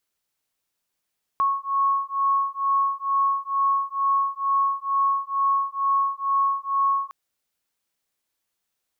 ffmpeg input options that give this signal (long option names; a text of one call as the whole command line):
ffmpeg -f lavfi -i "aevalsrc='0.0708*(sin(2*PI*1100*t)+sin(2*PI*1102.2*t))':duration=5.71:sample_rate=44100" out.wav